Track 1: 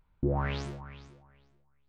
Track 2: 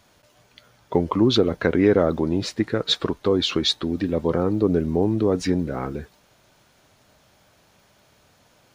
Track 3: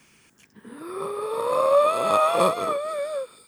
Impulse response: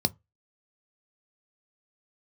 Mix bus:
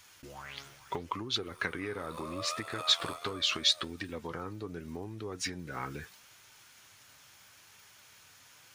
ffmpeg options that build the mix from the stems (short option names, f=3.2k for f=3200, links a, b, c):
-filter_complex "[0:a]volume=-10dB[a];[1:a]equalizer=f=100:t=o:w=0.67:g=9,equalizer=f=630:t=o:w=0.67:g=-7,equalizer=f=4k:t=o:w=0.67:g=-4,acompressor=threshold=-26dB:ratio=8,volume=1dB,asplit=2[b][c];[2:a]tremolo=f=83:d=0.71,adelay=650,volume=-9.5dB[d];[c]apad=whole_len=181769[e];[d][e]sidechaincompress=threshold=-33dB:ratio=3:attack=22:release=438[f];[a][b][f]amix=inputs=3:normalize=0,tiltshelf=f=750:g=-10,flanger=delay=2.2:depth=5.1:regen=73:speed=0.77:shape=sinusoidal"